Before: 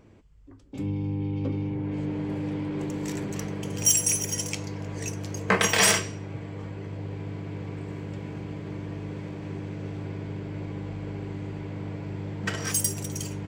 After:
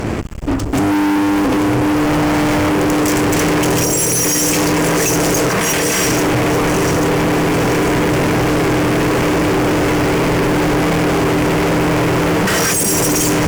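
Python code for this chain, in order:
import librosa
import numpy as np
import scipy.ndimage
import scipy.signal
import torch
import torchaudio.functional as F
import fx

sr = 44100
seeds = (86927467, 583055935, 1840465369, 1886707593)

y = fx.lower_of_two(x, sr, delay_ms=0.91, at=(2.05, 2.69))
y = fx.hum_notches(y, sr, base_hz=50, count=5)
y = fx.over_compress(y, sr, threshold_db=-35.0, ratio=-1.0)
y = fx.echo_alternate(y, sr, ms=421, hz=860.0, feedback_pct=71, wet_db=-11.0)
y = fx.fuzz(y, sr, gain_db=52.0, gate_db=-57.0)
y = fx.peak_eq(y, sr, hz=3800.0, db=-6.0, octaves=0.56)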